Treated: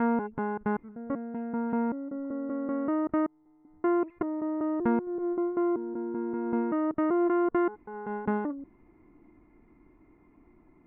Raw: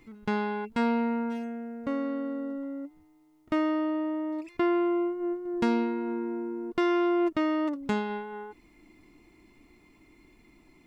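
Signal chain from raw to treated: slices in reverse order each 0.192 s, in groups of 5; LPF 1600 Hz 24 dB/oct

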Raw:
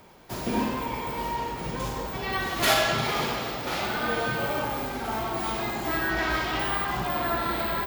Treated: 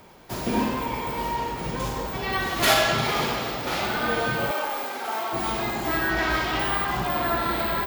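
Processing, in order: 4.51–5.33 HPF 470 Hz 12 dB/oct; gain +2.5 dB

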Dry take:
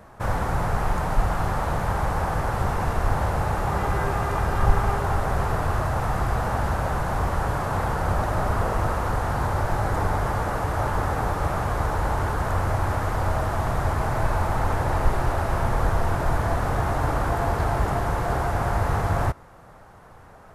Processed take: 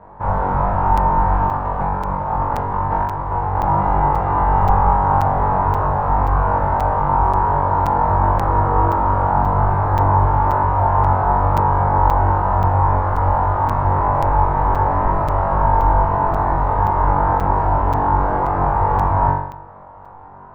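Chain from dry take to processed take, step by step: LPF 1300 Hz 12 dB/oct; bell 930 Hz +13 dB 0.34 oct; 1.47–3.55 negative-ratio compressor -24 dBFS, ratio -0.5; flutter echo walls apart 3.6 m, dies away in 0.75 s; crackling interface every 0.53 s, samples 256, zero, from 0.97

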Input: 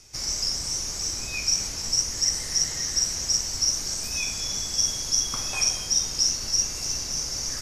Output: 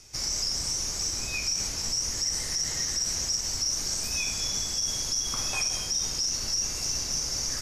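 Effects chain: limiter -19 dBFS, peak gain reduction 9 dB

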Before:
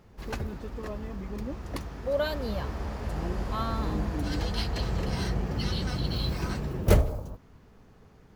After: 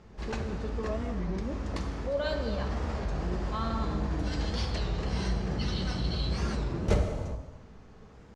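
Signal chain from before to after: LPF 7900 Hz 24 dB/oct; in parallel at -1.5 dB: negative-ratio compressor -35 dBFS, ratio -1; on the sum: non-linear reverb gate 0.43 s falling, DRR 4 dB; record warp 33 1/3 rpm, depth 160 cents; gain -6 dB

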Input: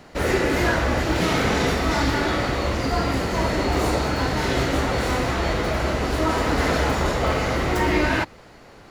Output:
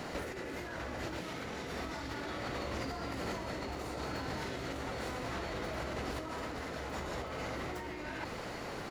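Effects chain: low shelf 62 Hz -9.5 dB; negative-ratio compressor -34 dBFS, ratio -1; echo 1.033 s -12.5 dB; gain -6 dB

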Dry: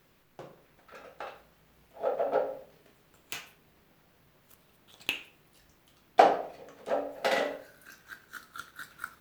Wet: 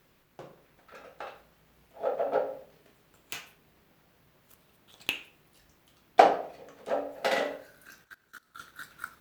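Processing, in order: 8.04–8.6 level quantiser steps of 23 dB; added harmonics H 7 -30 dB, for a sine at -3 dBFS; gain +2 dB

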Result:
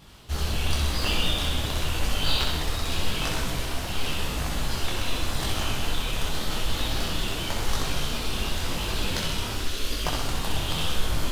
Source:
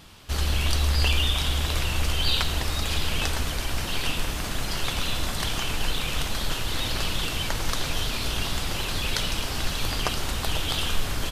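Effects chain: 9.55–10.06 fixed phaser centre 350 Hz, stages 4; in parallel at -9.5 dB: sample-rate reducer 3000 Hz; on the sum: flutter echo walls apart 10.9 m, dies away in 0.88 s; detuned doubles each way 31 cents

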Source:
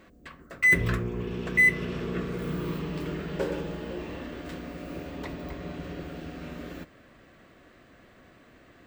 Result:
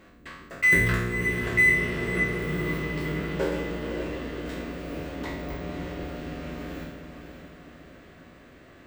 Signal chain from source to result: spectral trails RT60 0.83 s; diffused feedback echo 0.551 s, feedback 51%, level -8.5 dB

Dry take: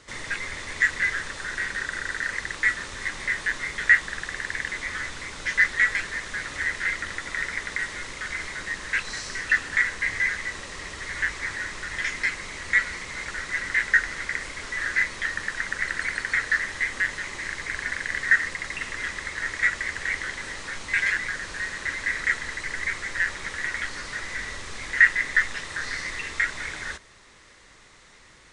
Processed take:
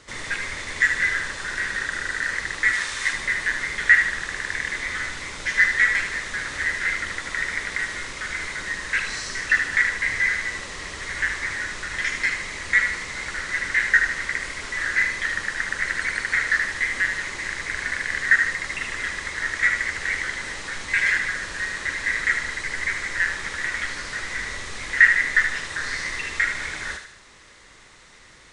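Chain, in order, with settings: 2.73–3.13 tilt shelf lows -6 dB, about 760 Hz; on a send: thinning echo 76 ms, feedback 48%, high-pass 930 Hz, level -6 dB; on the sum: gain +2 dB

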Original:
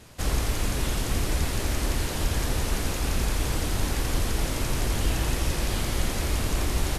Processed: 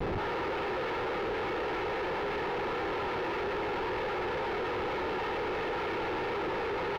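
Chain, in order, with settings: mistuned SSB +99 Hz 280–2500 Hz; comb 2.3 ms, depth 82%; reverb removal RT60 0.76 s; on a send: echo 0.34 s -10 dB; on the sum: shoebox room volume 420 m³, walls furnished, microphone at 4.5 m; Schmitt trigger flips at -46 dBFS; air absorption 320 m; gain -4.5 dB

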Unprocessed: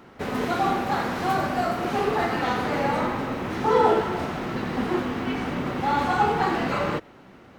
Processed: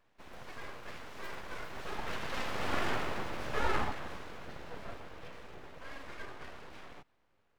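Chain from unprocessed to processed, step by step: Doppler pass-by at 3.01, 15 m/s, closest 7.4 m; full-wave rectifier; gain -5 dB

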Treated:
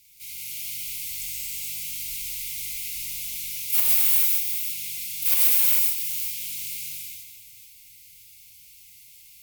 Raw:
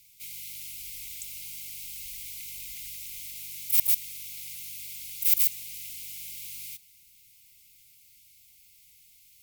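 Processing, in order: reverse delay 0.268 s, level -8.5 dB; one-sided clip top -10.5 dBFS, bottom -6 dBFS; non-linear reverb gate 0.48 s flat, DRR -6.5 dB

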